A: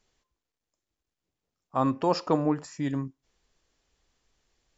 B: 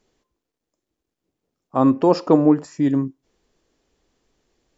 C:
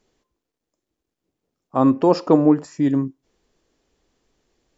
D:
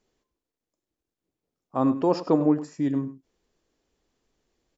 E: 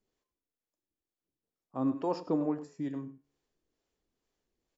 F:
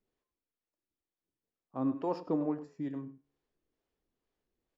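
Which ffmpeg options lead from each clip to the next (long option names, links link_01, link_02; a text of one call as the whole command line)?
ffmpeg -i in.wav -af "equalizer=frequency=320:width=0.59:gain=10.5,volume=1.5dB" out.wav
ffmpeg -i in.wav -af anull out.wav
ffmpeg -i in.wav -af "aecho=1:1:100:0.188,volume=-6.5dB" out.wav
ffmpeg -i in.wav -filter_complex "[0:a]acrossover=split=420[link_01][link_02];[link_01]aeval=exprs='val(0)*(1-0.5/2+0.5/2*cos(2*PI*2.2*n/s))':channel_layout=same[link_03];[link_02]aeval=exprs='val(0)*(1-0.5/2-0.5/2*cos(2*PI*2.2*n/s))':channel_layout=same[link_04];[link_03][link_04]amix=inputs=2:normalize=0,flanger=delay=9.9:depth=4.3:regen=85:speed=0.45:shape=sinusoidal,volume=-2.5dB" out.wav
ffmpeg -i in.wav -af "adynamicsmooth=sensitivity=7:basefreq=4600,volume=-1.5dB" out.wav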